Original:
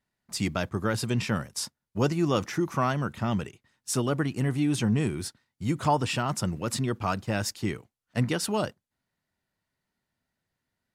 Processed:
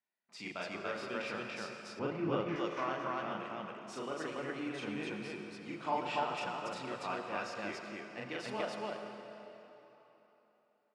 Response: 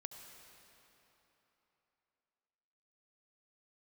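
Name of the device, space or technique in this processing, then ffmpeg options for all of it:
station announcement: -filter_complex "[0:a]highpass=370,lowpass=3.7k,equalizer=f=2.4k:t=o:w=0.25:g=6,aecho=1:1:37.9|285.7:0.891|1[a];[1:a]atrim=start_sample=2205[b];[a][b]afir=irnorm=-1:irlink=0,asettb=1/sr,asplit=3[c][d][e];[c]atrim=end=1.994[f];[d]atrim=start=1.99:end=2.56,asetpts=PTS-STARTPTS,afade=t=in:d=0.004:c=qsin,afade=t=out:st=0.566:d=0.004:c=qsin,bass=f=250:g=12,treble=f=4k:g=-14[g];[e]atrim=start=2.556[h];[f][g]acrossfade=d=0.004:c1=hsin:c2=qsin[i];[i][h]acrossfade=d=0.004:c1=qsin:c2=hsin,volume=-7dB"

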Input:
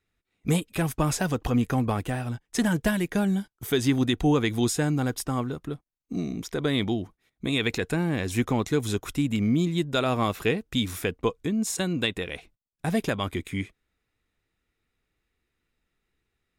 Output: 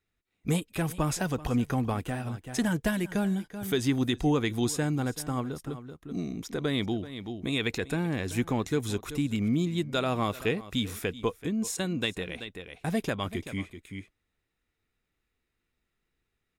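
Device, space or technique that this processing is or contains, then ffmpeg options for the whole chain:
ducked delay: -filter_complex "[0:a]asplit=3[a][b][c];[b]adelay=383,volume=-6.5dB[d];[c]apad=whole_len=748499[e];[d][e]sidechaincompress=threshold=-35dB:ratio=8:attack=16:release=335[f];[a][f]amix=inputs=2:normalize=0,volume=-3.5dB"

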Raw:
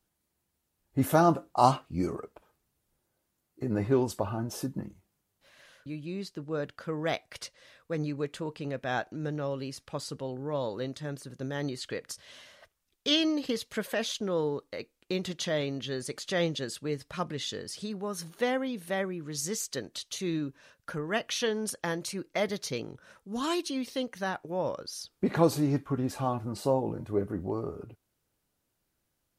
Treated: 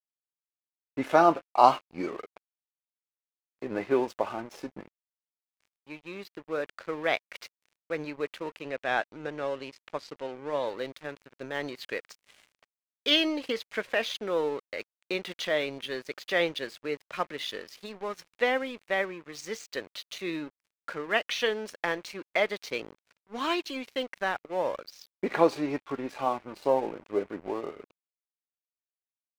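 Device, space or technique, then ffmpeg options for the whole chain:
pocket radio on a weak battery: -filter_complex "[0:a]highpass=380,lowpass=3.8k,aeval=exprs='sgn(val(0))*max(abs(val(0))-0.00335,0)':c=same,equalizer=f=2.3k:t=o:w=0.59:g=5.5,asettb=1/sr,asplit=3[a][b][c];[a]atrim=end=8.624[d];[b]atrim=start=8.62:end=10.67,asetpts=PTS-STARTPTS,afade=t=in:d=0.004:c=qsin,afade=t=out:st=2.046:d=0.004:c=qsin,lowpass=9.3k[e];[c]atrim=start=10.666[f];[d][e]acrossfade=d=0.004:c1=hsin:c2=qsin[g];[g][f]acrossfade=d=0.004:c1=qsin:c2=hsin,volume=4dB"

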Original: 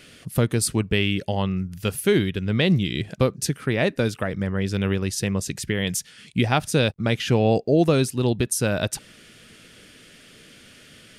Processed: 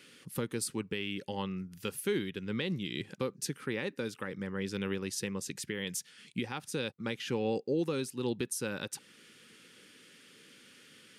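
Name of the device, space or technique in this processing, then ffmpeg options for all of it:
PA system with an anti-feedback notch: -af "highpass=190,asuperstop=centerf=660:order=4:qfactor=3.3,alimiter=limit=-14.5dB:level=0:latency=1:release=399,volume=-8dB"

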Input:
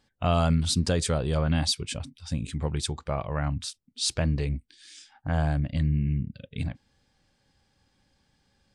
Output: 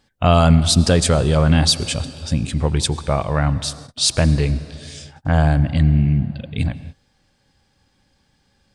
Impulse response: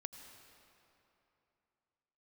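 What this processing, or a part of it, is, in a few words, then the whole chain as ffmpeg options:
keyed gated reverb: -filter_complex "[0:a]asplit=3[a][b][c];[1:a]atrim=start_sample=2205[d];[b][d]afir=irnorm=-1:irlink=0[e];[c]apad=whole_len=385871[f];[e][f]sidechaingate=range=-37dB:threshold=-55dB:ratio=16:detection=peak,volume=0dB[g];[a][g]amix=inputs=2:normalize=0,volume=6dB"

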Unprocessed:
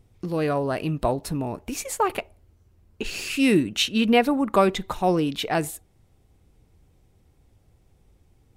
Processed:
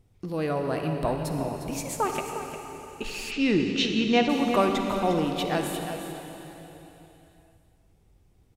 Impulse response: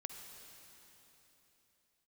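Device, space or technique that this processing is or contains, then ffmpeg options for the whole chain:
cave: -filter_complex "[0:a]aecho=1:1:355:0.299[a];[1:a]atrim=start_sample=2205[b];[a][b]afir=irnorm=-1:irlink=0,asplit=3[c][d][e];[c]afade=t=out:st=3.3:d=0.02[f];[d]lowpass=f=5.8k:w=0.5412,lowpass=f=5.8k:w=1.3066,afade=t=in:st=3.3:d=0.02,afade=t=out:st=4.28:d=0.02[g];[e]afade=t=in:st=4.28:d=0.02[h];[f][g][h]amix=inputs=3:normalize=0"

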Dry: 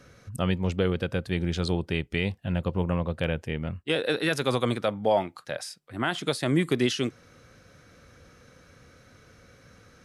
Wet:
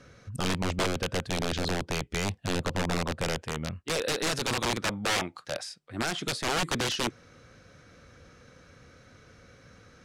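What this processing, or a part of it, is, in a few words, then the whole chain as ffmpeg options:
overflowing digital effects unit: -filter_complex "[0:a]asettb=1/sr,asplit=3[a][b][c];[a]atrim=end=3.374[d];[b]atrim=start=3.37:end=4.18,asetpts=PTS-STARTPTS,afade=t=in:d=0.004:c=qsin,afade=t=out:st=0.806:d=0.004:c=qsin,equalizer=f=80:w=0.31:g=-3[e];[c]atrim=start=4.176[f];[d][e]acrossfade=d=0.004:c1=hsin:c2=qsin[g];[g][f]acrossfade=d=0.004:c1=qsin:c2=hsin,aeval=exprs='(mod(11.2*val(0)+1,2)-1)/11.2':c=same,lowpass=8.2k"

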